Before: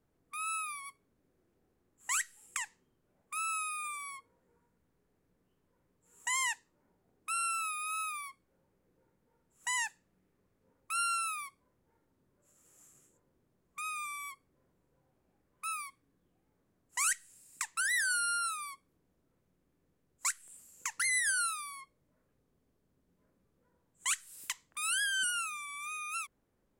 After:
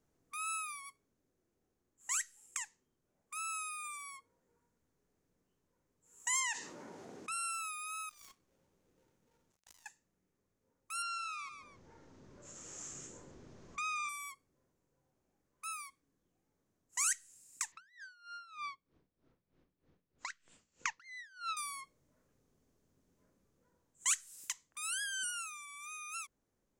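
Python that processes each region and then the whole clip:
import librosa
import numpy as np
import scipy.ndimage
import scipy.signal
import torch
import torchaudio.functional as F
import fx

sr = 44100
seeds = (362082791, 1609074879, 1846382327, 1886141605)

y = fx.chain(x, sr, fx.bandpass_edges(low_hz=200.0, high_hz=6600.0),
    fx.env_flatten(amount_pct=70), at=(6.4, 7.32))
y = fx.chain(y, sr, fx.dead_time(dead_ms=0.22),
    fx.over_compress(threshold_db=-57.0, ratio=-1.0), at=(8.09, 9.86))
y = fx.chain(y, sr, fx.lowpass(hz=6200.0, slope=24),
    fx.echo_feedback(ms=137, feedback_pct=18, wet_db=-14.5),
    fx.env_flatten(amount_pct=50), at=(11.02, 14.09))
y = fx.chain(y, sr, fx.lowpass(hz=4300.0, slope=24),
    fx.over_compress(threshold_db=-39.0, ratio=-0.5),
    fx.tremolo_db(hz=3.2, depth_db=19), at=(17.72, 21.57))
y = fx.peak_eq(y, sr, hz=6400.0, db=9.0, octaves=0.64)
y = fx.hum_notches(y, sr, base_hz=60, count=3)
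y = fx.rider(y, sr, range_db=10, speed_s=2.0)
y = y * 10.0 ** (-8.0 / 20.0)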